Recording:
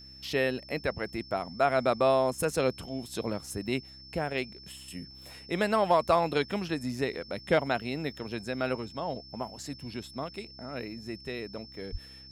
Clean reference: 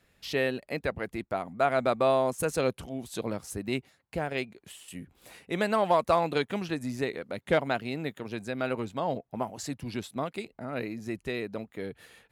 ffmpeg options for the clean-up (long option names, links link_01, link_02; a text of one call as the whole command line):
ffmpeg -i in.wav -filter_complex "[0:a]bandreject=frequency=65.9:width_type=h:width=4,bandreject=frequency=131.8:width_type=h:width=4,bandreject=frequency=197.7:width_type=h:width=4,bandreject=frequency=263.6:width_type=h:width=4,bandreject=frequency=329.5:width_type=h:width=4,bandreject=frequency=5300:width=30,asplit=3[link_01][link_02][link_03];[link_01]afade=type=out:start_time=11.91:duration=0.02[link_04];[link_02]highpass=frequency=140:width=0.5412,highpass=frequency=140:width=1.3066,afade=type=in:start_time=11.91:duration=0.02,afade=type=out:start_time=12.03:duration=0.02[link_05];[link_03]afade=type=in:start_time=12.03:duration=0.02[link_06];[link_04][link_05][link_06]amix=inputs=3:normalize=0,asetnsamples=nb_out_samples=441:pad=0,asendcmd='8.77 volume volume 4dB',volume=0dB" out.wav